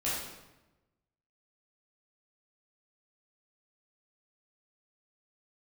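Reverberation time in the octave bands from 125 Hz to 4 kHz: 1.4, 1.2, 1.1, 1.0, 0.90, 0.75 seconds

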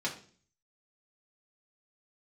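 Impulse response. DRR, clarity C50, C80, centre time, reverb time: −3.0 dB, 10.0 dB, 14.5 dB, 17 ms, 0.45 s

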